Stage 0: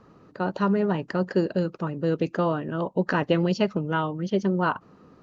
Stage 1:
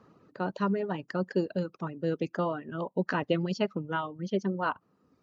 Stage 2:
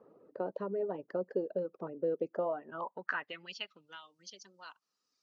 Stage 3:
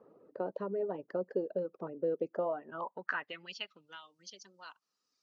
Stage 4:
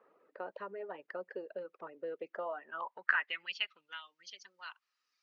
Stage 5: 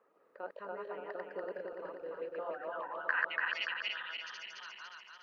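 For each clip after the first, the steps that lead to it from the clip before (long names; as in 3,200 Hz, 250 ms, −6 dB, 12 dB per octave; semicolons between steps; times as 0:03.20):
high-pass filter 88 Hz; reverb reduction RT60 1.2 s; level −4.5 dB
high-shelf EQ 5,400 Hz +6 dB; downward compressor 2.5 to 1, threshold −33 dBFS, peak gain reduction 8 dB; band-pass filter sweep 500 Hz → 5,300 Hz, 0:02.32–0:04.04; level +5.5 dB
no processing that can be heard
resonant band-pass 2,100 Hz, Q 1.7; level +9 dB
feedback delay that plays each chunk backwards 144 ms, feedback 75%, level 0 dB; level −4 dB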